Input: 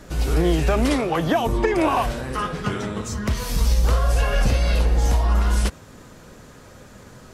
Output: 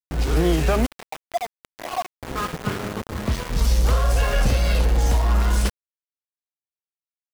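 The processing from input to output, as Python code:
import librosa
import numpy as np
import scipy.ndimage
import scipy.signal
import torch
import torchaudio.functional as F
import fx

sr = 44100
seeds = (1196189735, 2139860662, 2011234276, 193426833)

y = fx.vowel_filter(x, sr, vowel='a', at=(0.85, 2.21), fade=0.02)
y = fx.env_lowpass(y, sr, base_hz=370.0, full_db=-15.0)
y = np.where(np.abs(y) >= 10.0 ** (-26.5 / 20.0), y, 0.0)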